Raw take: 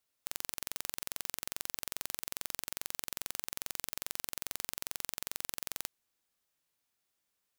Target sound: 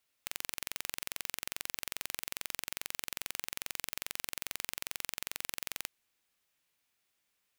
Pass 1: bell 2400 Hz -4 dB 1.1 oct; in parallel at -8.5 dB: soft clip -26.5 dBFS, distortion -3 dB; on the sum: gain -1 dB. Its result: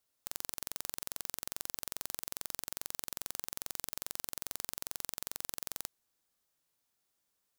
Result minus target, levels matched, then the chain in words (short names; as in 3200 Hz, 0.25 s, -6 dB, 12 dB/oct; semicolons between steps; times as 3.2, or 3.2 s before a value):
2000 Hz band -7.5 dB
bell 2400 Hz +5.5 dB 1.1 oct; in parallel at -8.5 dB: soft clip -26.5 dBFS, distortion 0 dB; on the sum: gain -1 dB